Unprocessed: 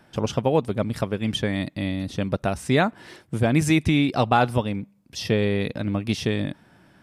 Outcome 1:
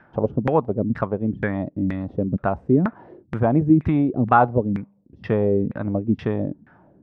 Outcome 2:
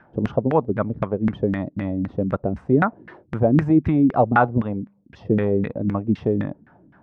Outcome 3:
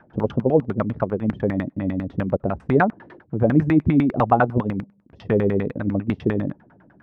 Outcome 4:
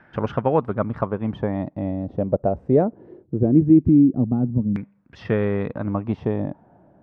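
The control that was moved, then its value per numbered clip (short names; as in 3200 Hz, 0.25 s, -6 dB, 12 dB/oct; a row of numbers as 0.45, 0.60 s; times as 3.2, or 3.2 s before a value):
LFO low-pass, rate: 2.1, 3.9, 10, 0.21 Hz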